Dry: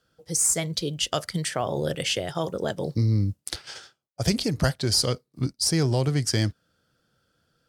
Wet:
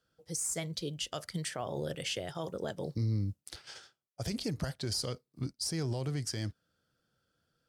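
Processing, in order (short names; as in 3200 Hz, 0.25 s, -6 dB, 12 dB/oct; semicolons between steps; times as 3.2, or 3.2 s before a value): limiter -16.5 dBFS, peak gain reduction 10 dB; gain -8.5 dB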